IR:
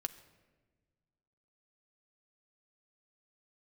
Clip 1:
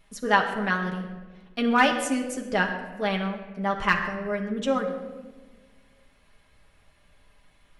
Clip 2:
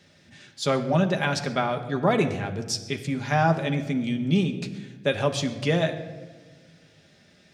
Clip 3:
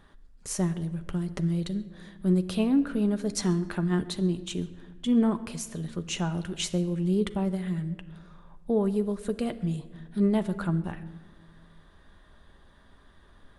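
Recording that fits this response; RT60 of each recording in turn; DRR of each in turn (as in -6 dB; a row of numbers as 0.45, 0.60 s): 3; 1.3, 1.4, 1.4 s; -0.5, 4.5, 9.0 dB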